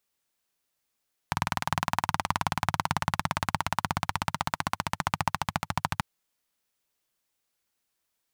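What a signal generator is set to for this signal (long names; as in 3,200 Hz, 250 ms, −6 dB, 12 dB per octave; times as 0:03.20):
pulse-train model of a single-cylinder engine, changing speed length 4.69 s, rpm 2,400, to 1,600, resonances 100/150/910 Hz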